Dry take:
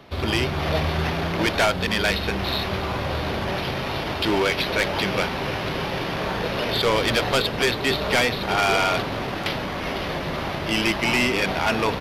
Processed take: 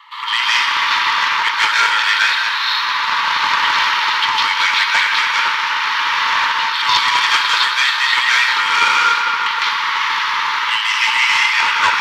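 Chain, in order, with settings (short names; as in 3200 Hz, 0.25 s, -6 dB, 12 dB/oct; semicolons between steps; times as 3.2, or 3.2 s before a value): Chebyshev high-pass 870 Hz, order 10; reverb RT60 3.5 s, pre-delay 0.128 s, DRR -5.5 dB; AGC; Doppler distortion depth 0.27 ms; gain -1 dB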